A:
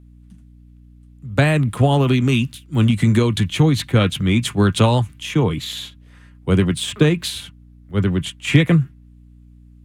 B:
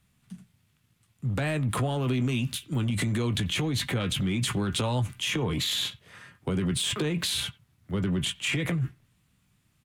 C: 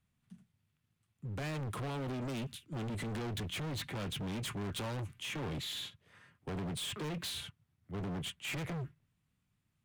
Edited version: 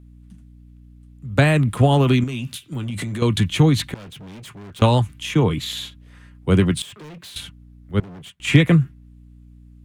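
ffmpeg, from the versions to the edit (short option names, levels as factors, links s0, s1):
-filter_complex "[2:a]asplit=3[s0][s1][s2];[0:a]asplit=5[s3][s4][s5][s6][s7];[s3]atrim=end=2.242[s8];[1:a]atrim=start=2.238:end=3.222[s9];[s4]atrim=start=3.218:end=3.942[s10];[s0]atrim=start=3.938:end=4.822[s11];[s5]atrim=start=4.818:end=6.822[s12];[s1]atrim=start=6.818:end=7.362[s13];[s6]atrim=start=7.358:end=8.002[s14];[s2]atrim=start=7.998:end=8.402[s15];[s7]atrim=start=8.398[s16];[s8][s9]acrossfade=d=0.004:c1=hsin:c2=hsin[s17];[s17][s10]acrossfade=d=0.004:c1=hsin:c2=hsin[s18];[s18][s11]acrossfade=d=0.004:c1=hsin:c2=hsin[s19];[s19][s12]acrossfade=d=0.004:c1=hsin:c2=hsin[s20];[s20][s13]acrossfade=d=0.004:c1=hsin:c2=hsin[s21];[s21][s14]acrossfade=d=0.004:c1=hsin:c2=hsin[s22];[s22][s15]acrossfade=d=0.004:c1=hsin:c2=hsin[s23];[s23][s16]acrossfade=d=0.004:c1=hsin:c2=hsin"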